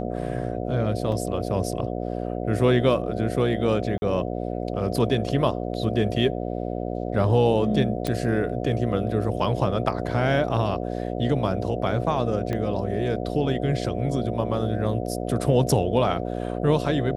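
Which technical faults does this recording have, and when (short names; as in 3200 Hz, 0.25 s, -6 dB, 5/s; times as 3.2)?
buzz 60 Hz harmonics 12 -29 dBFS
1.12 gap 2.5 ms
3.98–4.02 gap 40 ms
8.07 pop -12 dBFS
12.53 pop -16 dBFS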